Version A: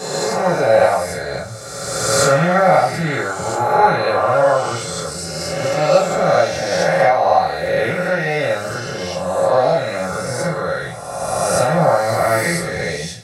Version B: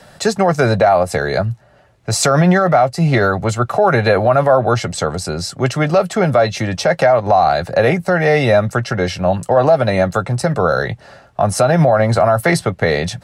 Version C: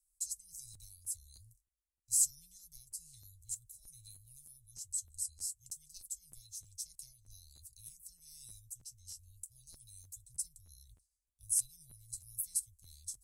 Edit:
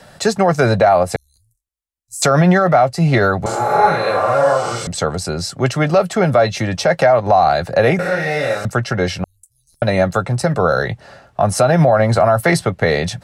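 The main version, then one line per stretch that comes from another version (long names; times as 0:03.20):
B
0:01.16–0:02.22: punch in from C
0:03.46–0:04.87: punch in from A
0:07.99–0:08.65: punch in from A
0:09.24–0:09.82: punch in from C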